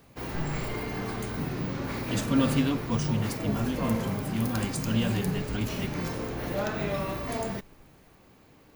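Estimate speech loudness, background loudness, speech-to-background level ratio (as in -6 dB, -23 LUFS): -31.0 LUFS, -32.5 LUFS, 1.5 dB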